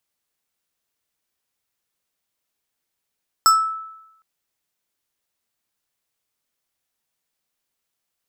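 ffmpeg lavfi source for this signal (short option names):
-f lavfi -i "aevalsrc='0.398*pow(10,-3*t/0.9)*sin(2*PI*1310*t+0.99*pow(10,-3*t/0.38)*sin(2*PI*5.04*1310*t))':d=0.76:s=44100"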